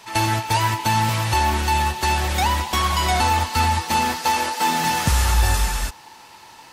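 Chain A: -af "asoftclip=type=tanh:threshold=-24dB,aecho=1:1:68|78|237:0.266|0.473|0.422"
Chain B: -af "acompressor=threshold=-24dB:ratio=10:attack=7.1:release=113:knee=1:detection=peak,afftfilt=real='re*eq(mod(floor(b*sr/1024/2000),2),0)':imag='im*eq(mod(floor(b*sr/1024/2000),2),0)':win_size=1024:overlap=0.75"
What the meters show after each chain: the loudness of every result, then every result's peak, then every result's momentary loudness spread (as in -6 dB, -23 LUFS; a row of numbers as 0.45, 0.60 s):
-25.5, -28.5 LUFS; -17.5, -13.0 dBFS; 5, 5 LU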